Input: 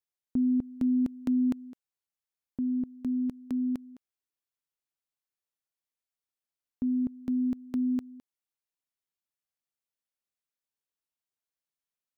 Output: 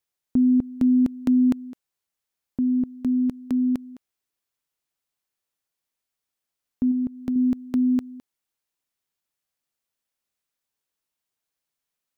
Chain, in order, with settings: 6.91–7.36 s: compression 2:1, threshold -33 dBFS, peak gain reduction 4 dB; trim +7.5 dB

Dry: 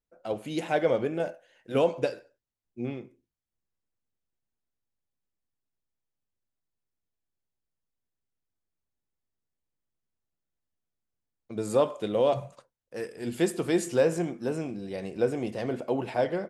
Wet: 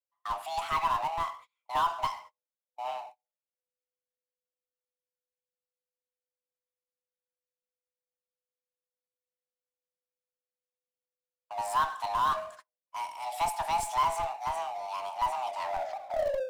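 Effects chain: tape stop on the ending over 1.08 s; hum notches 60/120/180/240/300/360 Hz; frequency shift +500 Hz; in parallel at -5.5 dB: Schmitt trigger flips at -21.5 dBFS; on the sum: gate -47 dBFS, range -46 dB; power-law waveshaper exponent 0.7; trim -7 dB

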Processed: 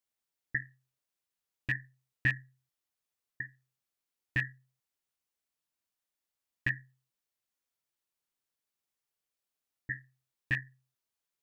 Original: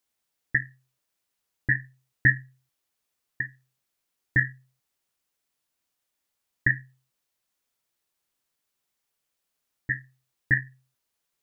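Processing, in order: rattle on loud lows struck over -26 dBFS, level -17 dBFS; trim -9 dB

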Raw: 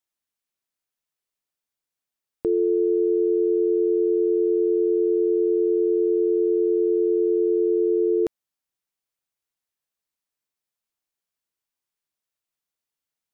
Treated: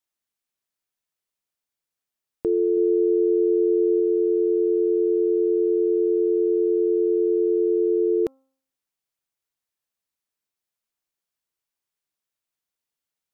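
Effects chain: 2.77–4.00 s: bass shelf 190 Hz +5.5 dB; de-hum 266.1 Hz, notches 5

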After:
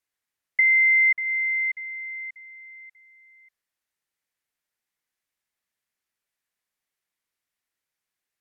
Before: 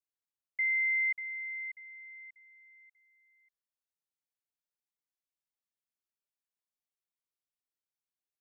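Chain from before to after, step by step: low-pass that closes with the level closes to 2 kHz, closed at -32.5 dBFS; peaking EQ 1.9 kHz +7.5 dB 0.77 oct; trim +8 dB

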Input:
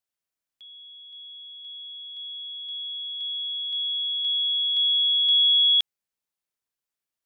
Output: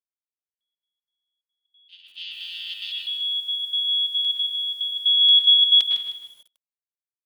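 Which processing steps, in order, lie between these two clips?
1.88–2.92 s: vocoder on a held chord major triad, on F3; gate -37 dBFS, range -45 dB; trance gate "x.xx.xxx" 181 bpm -24 dB; 4.36–5.00 s: compression 12:1, threshold -30 dBFS, peak gain reduction 10 dB; treble shelf 3.3 kHz +6.5 dB; comb 4.4 ms, depth 40%; reverberation RT60 0.60 s, pre-delay 100 ms, DRR 0 dB; bit-crushed delay 154 ms, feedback 35%, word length 8-bit, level -9.5 dB

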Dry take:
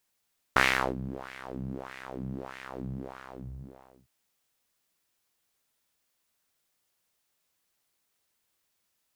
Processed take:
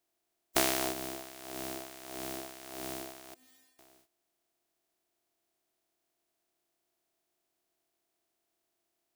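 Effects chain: spectral contrast reduction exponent 0.16; 3.34–3.79 s: inharmonic resonator 250 Hz, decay 0.57 s, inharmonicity 0.002; small resonant body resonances 350/670 Hz, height 17 dB, ringing for 50 ms; trim -6 dB

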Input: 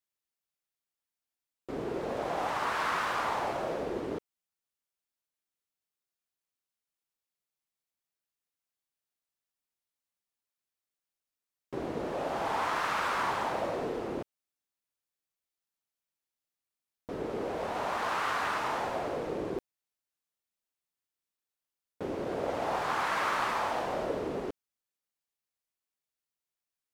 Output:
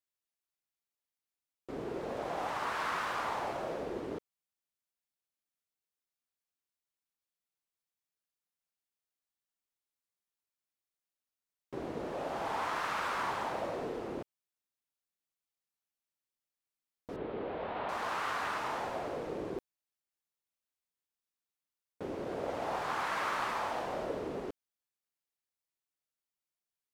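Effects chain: 17.16–17.89 s: steep low-pass 3.8 kHz 36 dB/octave; trim -4 dB

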